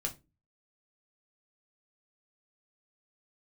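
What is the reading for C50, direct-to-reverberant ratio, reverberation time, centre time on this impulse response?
16.5 dB, 1.0 dB, 0.25 s, 10 ms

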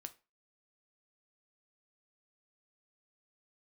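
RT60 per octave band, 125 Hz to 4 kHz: 0.25, 0.30, 0.30, 0.30, 0.30, 0.25 s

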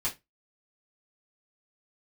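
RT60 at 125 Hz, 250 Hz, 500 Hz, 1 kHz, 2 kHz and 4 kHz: 0.25, 0.25, 0.20, 0.20, 0.20, 0.15 s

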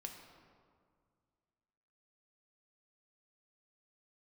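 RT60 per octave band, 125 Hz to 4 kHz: 2.5, 2.3, 2.1, 2.0, 1.4, 1.1 s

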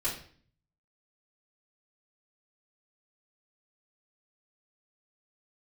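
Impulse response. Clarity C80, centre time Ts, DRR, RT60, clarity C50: 11.5 dB, 29 ms, -10.5 dB, 0.50 s, 7.0 dB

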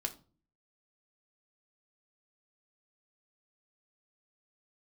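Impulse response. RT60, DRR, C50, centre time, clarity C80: 0.40 s, 3.0 dB, 15.5 dB, 8 ms, 21.0 dB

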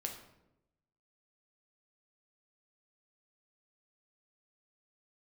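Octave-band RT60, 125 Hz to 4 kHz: 1.2, 1.1, 1.0, 0.80, 0.65, 0.55 s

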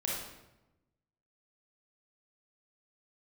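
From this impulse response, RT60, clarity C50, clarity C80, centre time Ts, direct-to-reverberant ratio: 0.95 s, -1.0 dB, 3.5 dB, 67 ms, -4.5 dB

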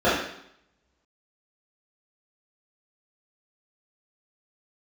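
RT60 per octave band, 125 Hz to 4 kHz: 0.80, 0.75, 0.70, 0.75, 0.70, 0.70 s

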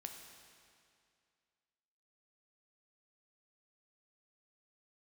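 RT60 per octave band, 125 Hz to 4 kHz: 2.3, 2.3, 2.3, 2.3, 2.2, 2.1 s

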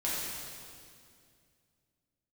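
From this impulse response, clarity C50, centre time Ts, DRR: -2.5 dB, 0.136 s, -8.0 dB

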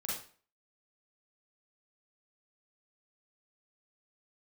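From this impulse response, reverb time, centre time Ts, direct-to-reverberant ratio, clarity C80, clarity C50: 0.45 s, 51 ms, -6.5 dB, 7.5 dB, 0.5 dB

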